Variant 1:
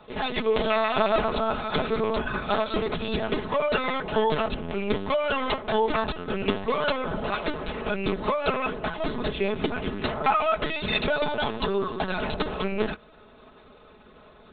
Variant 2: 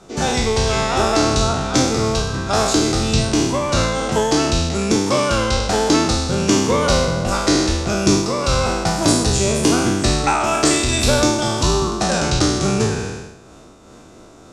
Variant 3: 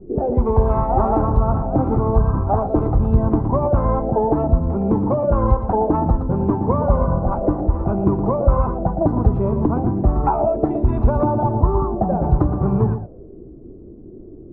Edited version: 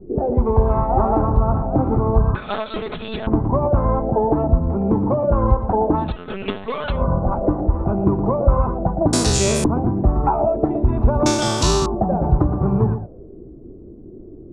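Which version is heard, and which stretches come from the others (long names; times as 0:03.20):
3
0:02.35–0:03.27: punch in from 1
0:06.07–0:06.93: punch in from 1, crossfade 0.24 s
0:09.13–0:09.64: punch in from 2
0:11.26–0:11.86: punch in from 2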